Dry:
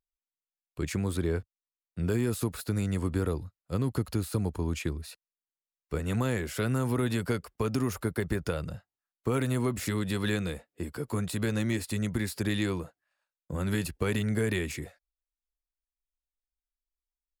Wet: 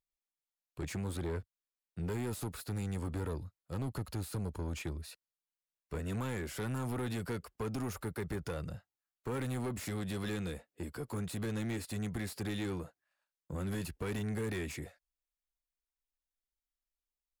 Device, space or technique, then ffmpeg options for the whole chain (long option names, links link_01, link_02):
saturation between pre-emphasis and de-emphasis: -af "highshelf=frequency=3400:gain=10.5,asoftclip=type=tanh:threshold=-28dB,highshelf=frequency=3400:gain=-10.5,volume=-3.5dB"